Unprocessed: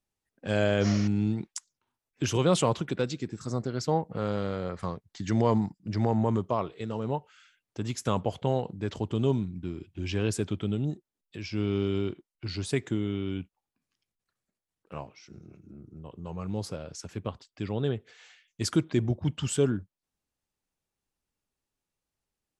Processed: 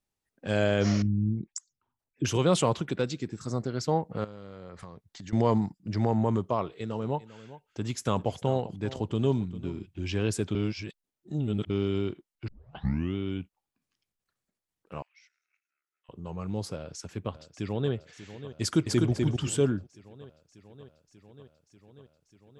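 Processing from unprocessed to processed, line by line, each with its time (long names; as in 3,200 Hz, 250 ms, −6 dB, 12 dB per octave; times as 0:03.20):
0:01.02–0:02.25: spectral envelope exaggerated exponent 2
0:04.24–0:05.33: downward compressor 8 to 1, threshold −39 dBFS
0:06.61–0:09.86: single-tap delay 398 ms −16.5 dB
0:10.55–0:11.70: reverse
0:12.48: tape start 0.67 s
0:15.02–0:16.09: four-pole ladder high-pass 1,700 Hz, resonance 60%
0:16.75–0:17.93: delay throw 590 ms, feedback 80%, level −13.5 dB
0:18.61–0:19.11: delay throw 250 ms, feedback 25%, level −3 dB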